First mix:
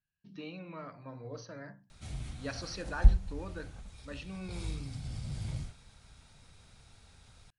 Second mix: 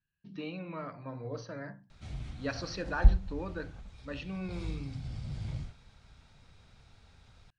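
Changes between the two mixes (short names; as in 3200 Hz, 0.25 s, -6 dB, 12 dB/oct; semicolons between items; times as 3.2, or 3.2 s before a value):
speech +4.5 dB; master: add air absorption 100 m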